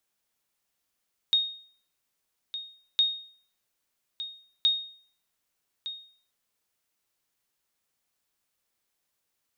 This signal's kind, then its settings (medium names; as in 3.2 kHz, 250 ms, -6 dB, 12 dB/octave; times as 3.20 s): sonar ping 3.72 kHz, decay 0.50 s, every 1.66 s, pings 3, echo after 1.21 s, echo -13 dB -16 dBFS